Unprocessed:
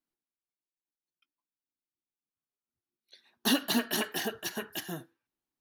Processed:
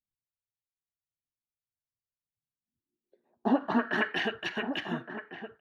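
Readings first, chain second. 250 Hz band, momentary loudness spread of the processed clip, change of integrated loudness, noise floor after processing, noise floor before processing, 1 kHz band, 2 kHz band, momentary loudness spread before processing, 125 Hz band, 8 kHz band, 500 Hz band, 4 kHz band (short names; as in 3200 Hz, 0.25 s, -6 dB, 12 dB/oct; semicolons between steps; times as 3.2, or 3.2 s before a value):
+2.5 dB, 13 LU, +0.5 dB, under -85 dBFS, under -85 dBFS, +6.0 dB, +4.5 dB, 12 LU, +2.0 dB, under -20 dB, +3.5 dB, -5.5 dB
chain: low-pass sweep 110 Hz -> 2400 Hz, 2.3–4.19; outdoor echo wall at 200 m, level -9 dB; gain +1.5 dB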